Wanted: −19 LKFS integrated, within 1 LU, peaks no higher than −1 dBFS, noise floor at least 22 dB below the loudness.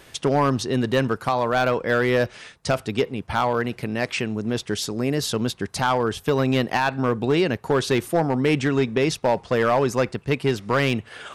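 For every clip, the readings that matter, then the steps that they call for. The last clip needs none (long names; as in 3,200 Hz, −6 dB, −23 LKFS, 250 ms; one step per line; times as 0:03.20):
share of clipped samples 0.8%; peaks flattened at −12.5 dBFS; integrated loudness −23.0 LKFS; sample peak −12.5 dBFS; target loudness −19.0 LKFS
→ clipped peaks rebuilt −12.5 dBFS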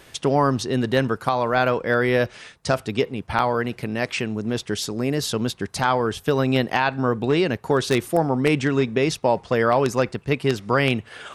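share of clipped samples 0.0%; integrated loudness −22.5 LKFS; sample peak −3.5 dBFS; target loudness −19.0 LKFS
→ level +3.5 dB
brickwall limiter −1 dBFS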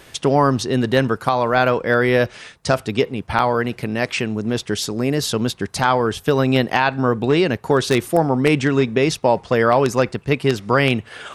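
integrated loudness −19.0 LKFS; sample peak −1.0 dBFS; background noise floor −48 dBFS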